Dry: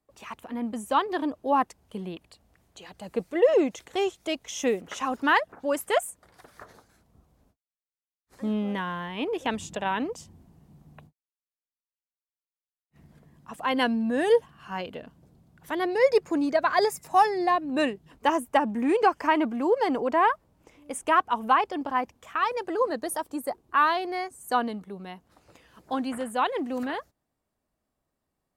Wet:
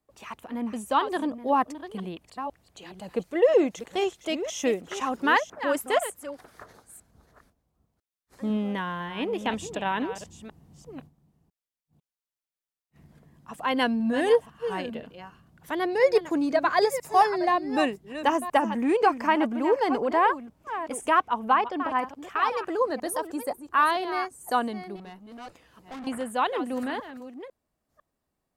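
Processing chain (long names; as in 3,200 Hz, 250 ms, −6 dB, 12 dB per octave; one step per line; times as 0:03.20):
delay that plays each chunk backwards 500 ms, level −11 dB
0:21.27–0:21.98: high-shelf EQ 3,800 Hz → 7,700 Hz −9.5 dB
0:24.96–0:26.07: tube saturation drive 37 dB, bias 0.35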